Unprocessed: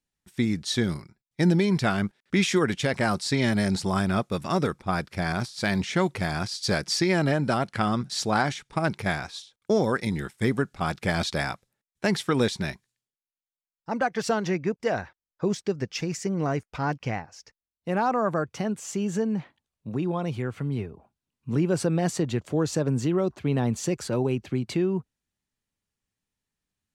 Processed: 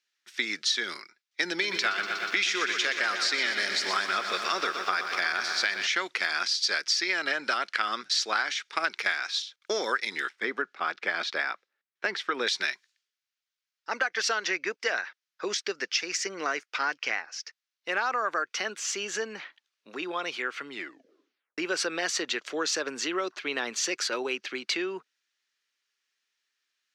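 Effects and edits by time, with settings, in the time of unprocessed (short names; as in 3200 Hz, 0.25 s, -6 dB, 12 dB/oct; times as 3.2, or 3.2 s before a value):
1.49–5.87 lo-fi delay 0.121 s, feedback 80%, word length 8-bit, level -10 dB
10.29–12.47 LPF 1000 Hz 6 dB/oct
20.68 tape stop 0.90 s
whole clip: HPF 340 Hz 24 dB/oct; band shelf 2800 Hz +15 dB 2.7 oct; compressor, threshold -20 dBFS; gain -4 dB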